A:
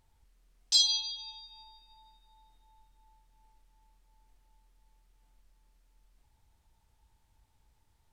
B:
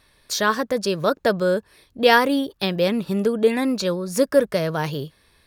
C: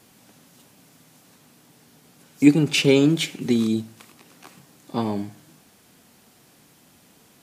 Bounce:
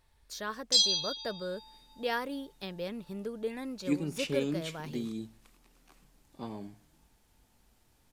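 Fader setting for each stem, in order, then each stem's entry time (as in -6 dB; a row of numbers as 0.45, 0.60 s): 0.0, -17.5, -16.0 dB; 0.00, 0.00, 1.45 s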